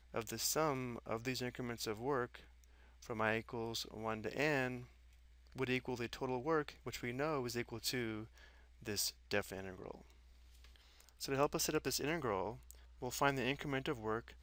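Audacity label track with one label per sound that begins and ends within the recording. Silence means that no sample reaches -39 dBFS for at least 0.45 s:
3.100000	4.760000	sound
5.580000	8.200000	sound
8.870000	9.910000	sound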